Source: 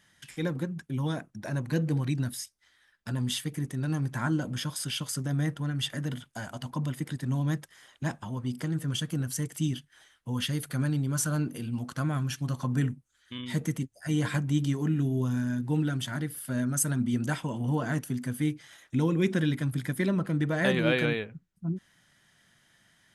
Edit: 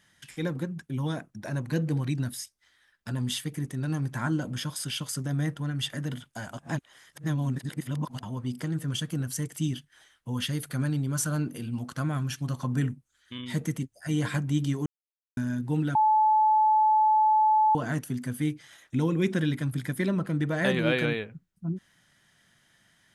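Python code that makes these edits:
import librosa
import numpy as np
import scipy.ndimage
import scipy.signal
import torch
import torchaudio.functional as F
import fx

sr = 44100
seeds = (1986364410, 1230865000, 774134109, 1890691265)

y = fx.edit(x, sr, fx.reverse_span(start_s=6.58, length_s=1.65),
    fx.silence(start_s=14.86, length_s=0.51),
    fx.bleep(start_s=15.95, length_s=1.8, hz=864.0, db=-18.0), tone=tone)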